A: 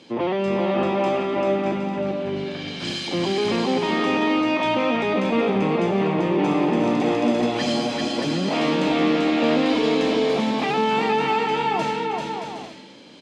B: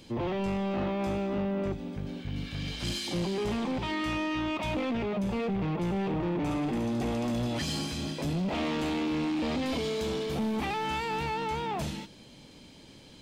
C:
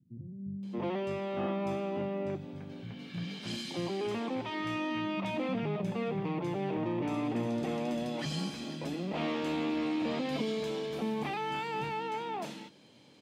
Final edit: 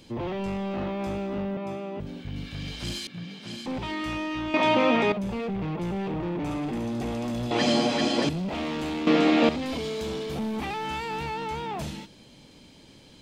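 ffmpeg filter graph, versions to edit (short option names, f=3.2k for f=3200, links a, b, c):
-filter_complex "[2:a]asplit=2[a][b];[0:a]asplit=3[c][d][e];[1:a]asplit=6[f][g][h][i][j][k];[f]atrim=end=1.572[l];[a]atrim=start=1.568:end=2.002[m];[g]atrim=start=1.998:end=3.072[n];[b]atrim=start=3.068:end=3.662[o];[h]atrim=start=3.658:end=4.542[p];[c]atrim=start=4.538:end=5.122[q];[i]atrim=start=5.118:end=7.512[r];[d]atrim=start=7.508:end=8.292[s];[j]atrim=start=8.288:end=9.072[t];[e]atrim=start=9.068:end=9.492[u];[k]atrim=start=9.488[v];[l][m]acrossfade=d=0.004:c1=hsin:c2=hsin[w];[w][n]acrossfade=d=0.004:c1=hsin:c2=hsin[x];[x][o]acrossfade=d=0.004:c1=hsin:c2=hsin[y];[y][p]acrossfade=d=0.004:c1=hsin:c2=hsin[z];[z][q]acrossfade=d=0.004:c1=hsin:c2=hsin[aa];[aa][r]acrossfade=d=0.004:c1=hsin:c2=hsin[ab];[ab][s]acrossfade=d=0.004:c1=hsin:c2=hsin[ac];[ac][t]acrossfade=d=0.004:c1=hsin:c2=hsin[ad];[ad][u]acrossfade=d=0.004:c1=hsin:c2=hsin[ae];[ae][v]acrossfade=d=0.004:c1=hsin:c2=hsin"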